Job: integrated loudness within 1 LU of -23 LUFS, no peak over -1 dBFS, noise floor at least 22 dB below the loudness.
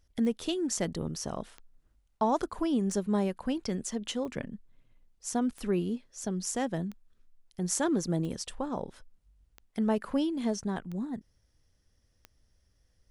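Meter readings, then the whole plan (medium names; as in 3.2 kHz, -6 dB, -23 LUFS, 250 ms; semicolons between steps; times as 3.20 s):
clicks found 10; loudness -32.0 LUFS; peak level -13.5 dBFS; loudness target -23.0 LUFS
-> de-click; trim +9 dB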